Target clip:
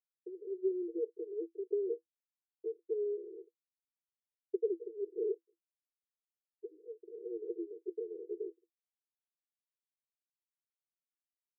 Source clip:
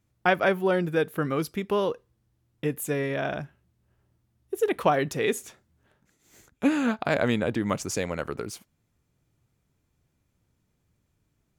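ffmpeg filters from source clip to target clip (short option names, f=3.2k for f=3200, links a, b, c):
-af "afftfilt=real='re*gte(hypot(re,im),0.00794)':imag='im*gte(hypot(re,im),0.00794)':win_size=1024:overlap=0.75,acompressor=threshold=-35dB:ratio=6,alimiter=level_in=6.5dB:limit=-24dB:level=0:latency=1:release=220,volume=-6.5dB,aresample=8000,aeval=exprs='val(0)*gte(abs(val(0)),0.00168)':c=same,aresample=44100,asuperpass=centerf=400:order=20:qfactor=2.7,volume=8dB"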